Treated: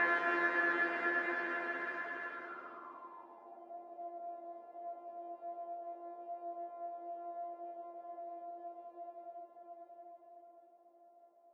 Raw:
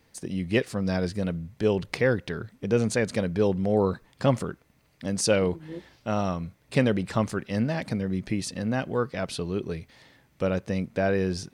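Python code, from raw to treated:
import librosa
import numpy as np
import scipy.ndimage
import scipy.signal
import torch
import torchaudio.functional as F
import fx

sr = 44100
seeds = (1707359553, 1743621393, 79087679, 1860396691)

y = np.r_[np.sort(x[:len(x) // 128 * 128].reshape(-1, 128), axis=1).ravel(), x[len(x) // 128 * 128:]]
y = scipy.signal.sosfilt(scipy.signal.butter(4, 350.0, 'highpass', fs=sr, output='sos'), y)
y = fx.high_shelf(y, sr, hz=2900.0, db=2.5)
y = fx.level_steps(y, sr, step_db=19)
y = fx.paulstretch(y, sr, seeds[0], factor=25.0, window_s=0.25, from_s=9.74)
y = fx.filter_sweep_lowpass(y, sr, from_hz=1700.0, to_hz=680.0, start_s=2.28, end_s=3.76, q=7.4)
y = F.gain(torch.from_numpy(y), 1.5).numpy()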